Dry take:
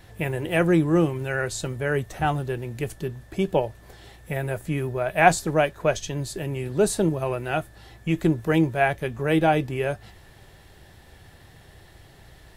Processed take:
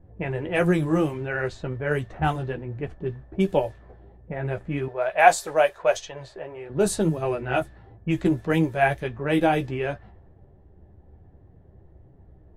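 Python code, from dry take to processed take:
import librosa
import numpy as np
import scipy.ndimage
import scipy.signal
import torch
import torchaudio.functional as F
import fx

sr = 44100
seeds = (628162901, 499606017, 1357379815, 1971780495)

y = fx.chorus_voices(x, sr, voices=4, hz=1.5, base_ms=13, depth_ms=3.0, mix_pct=35)
y = fx.env_lowpass(y, sr, base_hz=420.0, full_db=-21.0)
y = fx.low_shelf_res(y, sr, hz=380.0, db=-13.0, q=1.5, at=(4.88, 6.7))
y = y * 10.0 ** (2.0 / 20.0)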